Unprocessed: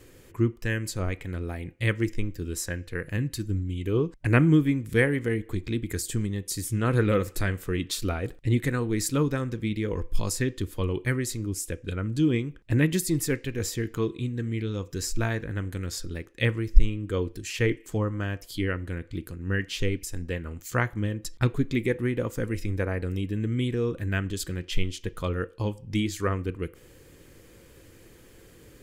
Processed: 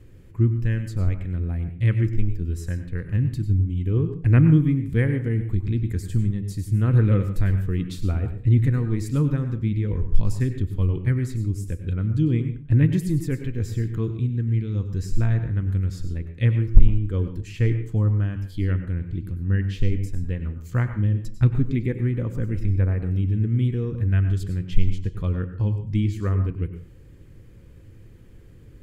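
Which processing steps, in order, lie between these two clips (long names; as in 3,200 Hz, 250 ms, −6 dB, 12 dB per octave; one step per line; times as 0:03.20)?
bass and treble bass +15 dB, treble −7 dB
gain into a clipping stage and back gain −5 dB
on a send: convolution reverb RT60 0.35 s, pre-delay 88 ms, DRR 9 dB
on the sum: level −6.5 dB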